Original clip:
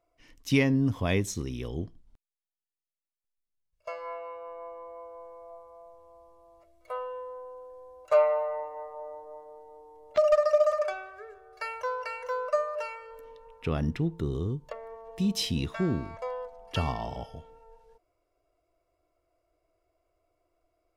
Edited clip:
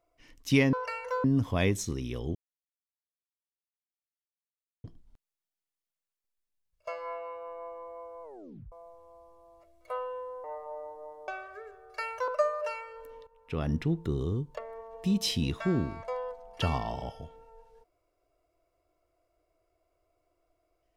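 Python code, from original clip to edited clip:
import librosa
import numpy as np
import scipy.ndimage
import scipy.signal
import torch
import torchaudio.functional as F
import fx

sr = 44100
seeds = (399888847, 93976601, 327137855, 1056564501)

y = fx.edit(x, sr, fx.insert_silence(at_s=1.84, length_s=2.49),
    fx.tape_stop(start_s=5.23, length_s=0.49),
    fx.cut(start_s=7.44, length_s=1.28),
    fx.cut(start_s=9.56, length_s=1.35),
    fx.move(start_s=11.91, length_s=0.51, to_s=0.73),
    fx.fade_in_from(start_s=13.41, length_s=0.49, floor_db=-16.0), tone=tone)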